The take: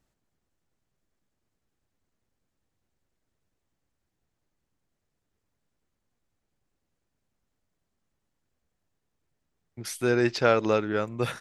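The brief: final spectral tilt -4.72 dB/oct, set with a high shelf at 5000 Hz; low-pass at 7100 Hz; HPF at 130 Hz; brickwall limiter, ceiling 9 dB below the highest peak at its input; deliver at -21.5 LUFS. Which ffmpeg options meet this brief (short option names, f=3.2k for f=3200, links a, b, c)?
-af "highpass=130,lowpass=7.1k,highshelf=f=5k:g=-9,volume=7.5dB,alimiter=limit=-9dB:level=0:latency=1"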